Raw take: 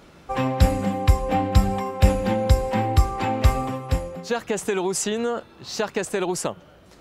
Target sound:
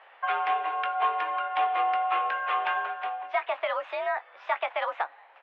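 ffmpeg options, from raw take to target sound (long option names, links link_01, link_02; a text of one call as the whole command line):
ffmpeg -i in.wav -filter_complex "[0:a]highpass=frequency=470:width_type=q:width=0.5412,highpass=frequency=470:width_type=q:width=1.307,lowpass=frequency=2200:width_type=q:width=0.5176,lowpass=frequency=2200:width_type=q:width=0.7071,lowpass=frequency=2200:width_type=q:width=1.932,afreqshift=53,asetrate=56889,aresample=44100,asplit=2[link_01][link_02];[link_02]adelay=20,volume=-12dB[link_03];[link_01][link_03]amix=inputs=2:normalize=0" out.wav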